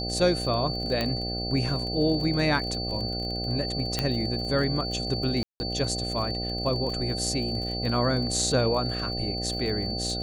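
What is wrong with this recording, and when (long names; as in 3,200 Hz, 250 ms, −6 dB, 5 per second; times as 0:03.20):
mains buzz 60 Hz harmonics 13 −33 dBFS
surface crackle 34 per second −33 dBFS
whistle 4,500 Hz −32 dBFS
0:01.01: click −13 dBFS
0:03.99: click −10 dBFS
0:05.43–0:05.60: drop-out 170 ms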